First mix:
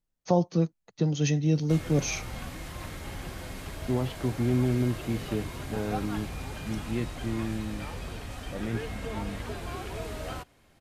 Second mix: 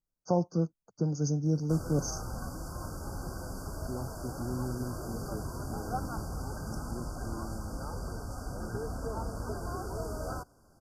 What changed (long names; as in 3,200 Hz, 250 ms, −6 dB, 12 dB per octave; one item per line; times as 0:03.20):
first voice −4.0 dB
second voice −11.0 dB
master: add linear-phase brick-wall band-stop 1,600–4,500 Hz